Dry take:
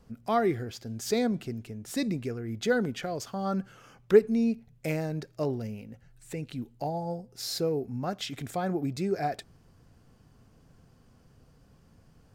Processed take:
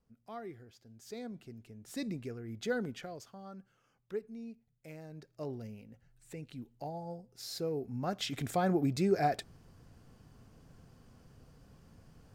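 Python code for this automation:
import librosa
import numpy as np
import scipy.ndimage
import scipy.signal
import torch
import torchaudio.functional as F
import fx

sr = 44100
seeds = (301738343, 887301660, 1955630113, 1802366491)

y = fx.gain(x, sr, db=fx.line((0.97, -19.0), (2.07, -8.0), (2.94, -8.0), (3.55, -19.5), (4.86, -19.5), (5.56, -9.0), (7.49, -9.0), (8.41, 0.5)))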